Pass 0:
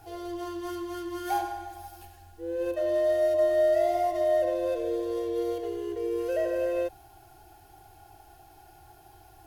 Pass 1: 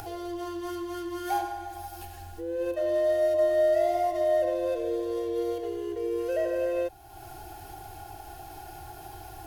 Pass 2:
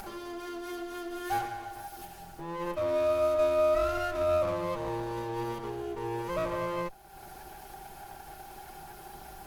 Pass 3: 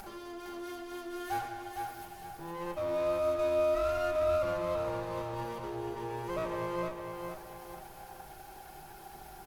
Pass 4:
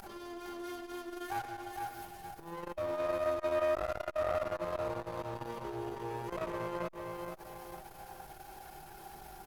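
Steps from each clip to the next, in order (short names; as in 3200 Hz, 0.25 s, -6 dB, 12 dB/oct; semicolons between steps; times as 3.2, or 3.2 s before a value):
upward compressor, threshold -32 dBFS
minimum comb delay 5.1 ms; gain -1.5 dB
feedback echo 0.459 s, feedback 39%, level -5.5 dB; gain -4 dB
core saturation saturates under 710 Hz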